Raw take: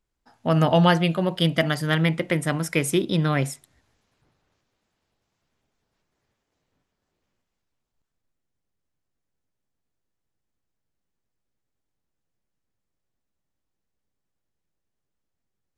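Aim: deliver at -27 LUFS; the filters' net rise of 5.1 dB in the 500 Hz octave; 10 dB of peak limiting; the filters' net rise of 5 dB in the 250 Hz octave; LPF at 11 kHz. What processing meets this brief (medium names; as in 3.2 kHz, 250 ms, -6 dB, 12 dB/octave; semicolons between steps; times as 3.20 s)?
low-pass 11 kHz; peaking EQ 250 Hz +7.5 dB; peaking EQ 500 Hz +4.5 dB; trim -5 dB; peak limiter -16 dBFS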